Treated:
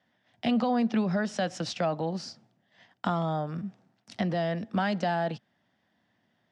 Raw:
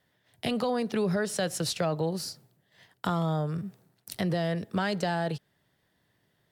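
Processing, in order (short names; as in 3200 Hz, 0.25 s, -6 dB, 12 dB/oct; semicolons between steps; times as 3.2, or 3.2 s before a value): speaker cabinet 110–5800 Hz, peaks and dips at 140 Hz -7 dB, 230 Hz +8 dB, 420 Hz -8 dB, 740 Hz +5 dB, 4200 Hz -6 dB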